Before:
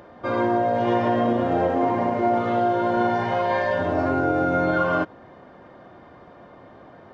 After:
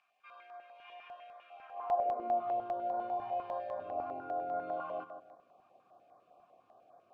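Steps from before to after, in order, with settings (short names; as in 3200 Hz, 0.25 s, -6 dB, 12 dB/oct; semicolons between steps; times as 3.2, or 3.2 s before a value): high-pass sweep 2100 Hz -> 97 Hz, 1.6–2.54; bit-crush 9-bit; vowel filter a; on a send: darkening echo 0.155 s, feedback 34%, low-pass 2000 Hz, level -10 dB; on the sum: stepped notch 10 Hz 500–2800 Hz; gain -6.5 dB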